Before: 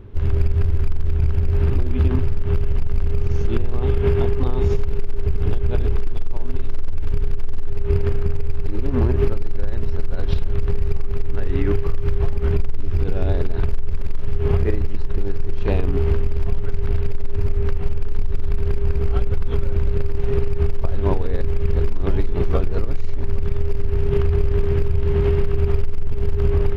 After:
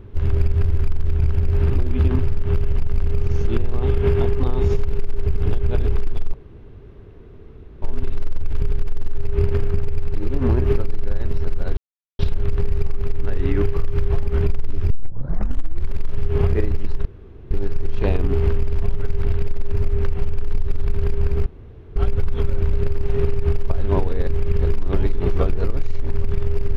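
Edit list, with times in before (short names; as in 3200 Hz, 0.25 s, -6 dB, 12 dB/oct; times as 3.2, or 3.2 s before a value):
6.34 insert room tone 1.48 s
10.29 insert silence 0.42 s
13 tape start 1.01 s
15.15 insert room tone 0.46 s
19.1 insert room tone 0.50 s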